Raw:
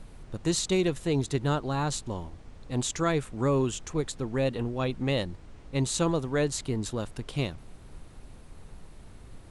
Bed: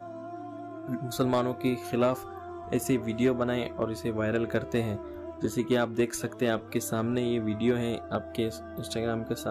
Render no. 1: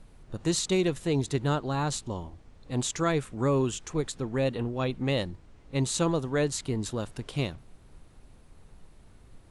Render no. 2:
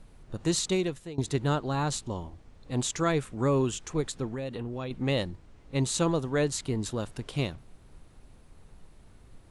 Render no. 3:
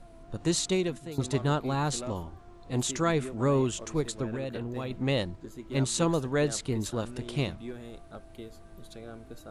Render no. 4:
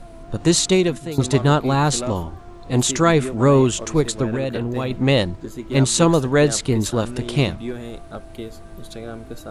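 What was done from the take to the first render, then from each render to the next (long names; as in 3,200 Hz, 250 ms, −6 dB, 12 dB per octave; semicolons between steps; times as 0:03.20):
noise reduction from a noise print 6 dB
0:00.65–0:01.18: fade out, to −20 dB; 0:04.32–0:04.91: downward compressor 5 to 1, threshold −31 dBFS
mix in bed −14.5 dB
level +11 dB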